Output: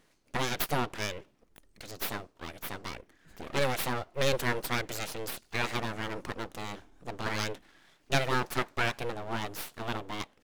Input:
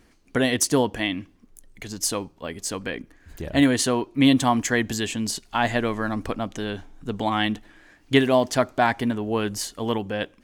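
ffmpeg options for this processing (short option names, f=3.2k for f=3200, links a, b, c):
-af "aeval=exprs='abs(val(0))':c=same,lowshelf=f=96:g=-8.5,atempo=1,volume=-5dB"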